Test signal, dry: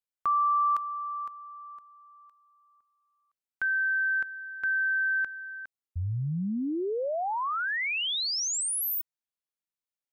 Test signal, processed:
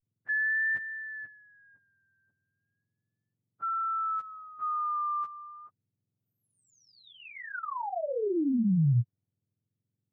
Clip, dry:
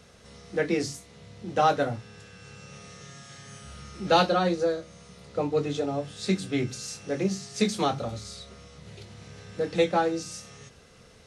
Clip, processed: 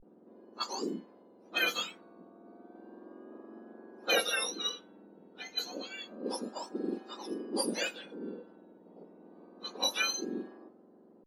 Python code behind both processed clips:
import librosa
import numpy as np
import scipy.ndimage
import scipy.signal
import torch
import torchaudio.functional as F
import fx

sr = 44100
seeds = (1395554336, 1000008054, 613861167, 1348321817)

y = fx.octave_mirror(x, sr, pivot_hz=1400.0)
y = fx.wow_flutter(y, sr, seeds[0], rate_hz=0.3, depth_cents=100.0)
y = fx.env_lowpass(y, sr, base_hz=580.0, full_db=-23.5)
y = y * librosa.db_to_amplitude(-3.5)